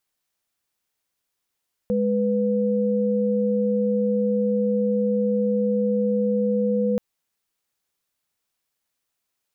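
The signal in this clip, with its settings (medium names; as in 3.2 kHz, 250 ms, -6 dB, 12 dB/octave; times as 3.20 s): chord G#3/B4 sine, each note -21.5 dBFS 5.08 s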